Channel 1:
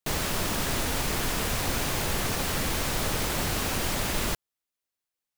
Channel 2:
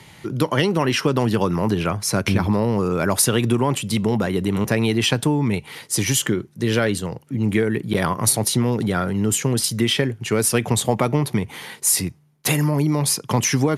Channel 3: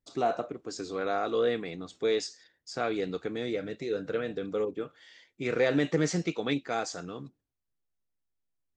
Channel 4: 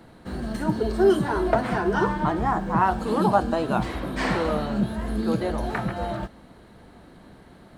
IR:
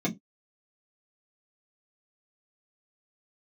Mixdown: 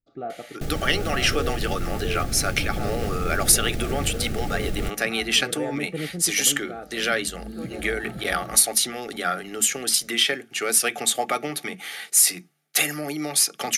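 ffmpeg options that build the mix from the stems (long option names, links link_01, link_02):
-filter_complex "[0:a]tiltshelf=frequency=680:gain=6.5,alimiter=limit=-22dB:level=0:latency=1:release=215,adelay=550,volume=0dB[link_01];[1:a]highpass=860,adelay=300,volume=1dB,asplit=2[link_02][link_03];[link_03]volume=-18.5dB[link_04];[2:a]lowpass=1600,volume=-5.5dB,asplit=2[link_05][link_06];[3:a]highshelf=frequency=7500:gain=12,adelay=2300,volume=-11dB[link_07];[link_06]apad=whole_len=444429[link_08];[link_07][link_08]sidechaincompress=threshold=-48dB:ratio=8:attack=16:release=597[link_09];[4:a]atrim=start_sample=2205[link_10];[link_04][link_10]afir=irnorm=-1:irlink=0[link_11];[link_01][link_02][link_05][link_09][link_11]amix=inputs=5:normalize=0,asuperstop=centerf=990:order=12:qfactor=3.9,lowshelf=frequency=200:gain=4.5"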